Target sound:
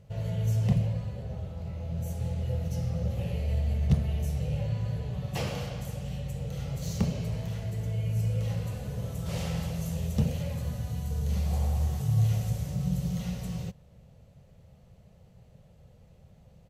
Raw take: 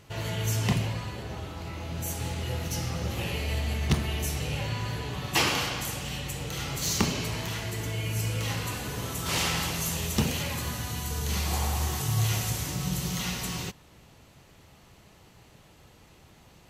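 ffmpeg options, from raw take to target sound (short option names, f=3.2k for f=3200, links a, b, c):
-af "firequalizer=gain_entry='entry(180,0);entry(310,-18);entry(520,-1);entry(950,-17)':delay=0.05:min_phase=1,volume=2.5dB"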